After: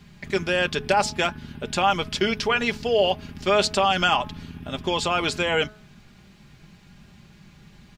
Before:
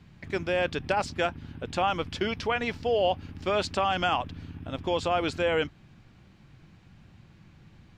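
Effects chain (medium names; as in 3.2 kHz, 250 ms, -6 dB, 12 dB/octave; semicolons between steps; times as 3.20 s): treble shelf 3.7 kHz +9.5 dB; comb 4.9 ms, depth 51%; de-hum 212.8 Hz, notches 8; trim +3.5 dB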